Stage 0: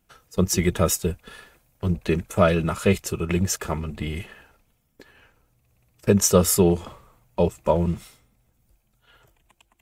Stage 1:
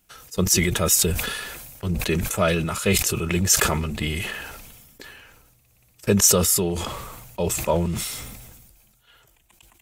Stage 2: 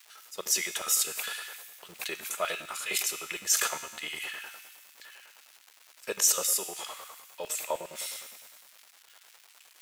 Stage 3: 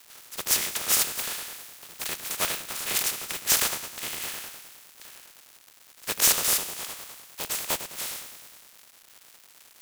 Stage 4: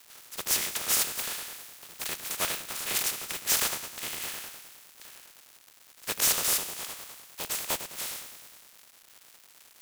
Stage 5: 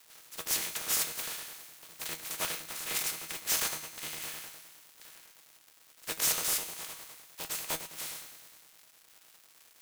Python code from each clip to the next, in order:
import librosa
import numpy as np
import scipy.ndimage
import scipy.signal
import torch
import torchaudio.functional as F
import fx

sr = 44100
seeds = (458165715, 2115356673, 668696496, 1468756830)

y1 = fx.rider(x, sr, range_db=5, speed_s=0.5)
y1 = fx.high_shelf(y1, sr, hz=2200.0, db=10.0)
y1 = fx.sustainer(y1, sr, db_per_s=35.0)
y1 = F.gain(torch.from_numpy(y1), -3.5).numpy()
y2 = fx.comb_fb(y1, sr, f0_hz=77.0, decay_s=1.3, harmonics='all', damping=0.0, mix_pct=70)
y2 = fx.dmg_crackle(y2, sr, seeds[0], per_s=520.0, level_db=-43.0)
y2 = fx.filter_lfo_highpass(y2, sr, shape='square', hz=9.8, low_hz=650.0, high_hz=1800.0, q=0.82)
y2 = F.gain(torch.from_numpy(y2), 2.0).numpy()
y3 = fx.spec_flatten(y2, sr, power=0.23)
y3 = F.gain(torch.from_numpy(y3), 4.0).numpy()
y4 = np.clip(y3, -10.0 ** (-17.0 / 20.0), 10.0 ** (-17.0 / 20.0))
y4 = F.gain(torch.from_numpy(y4), -2.0).numpy()
y5 = fx.comb_fb(y4, sr, f0_hz=160.0, decay_s=0.17, harmonics='all', damping=0.0, mix_pct=70)
y5 = F.gain(torch.from_numpy(y5), 2.0).numpy()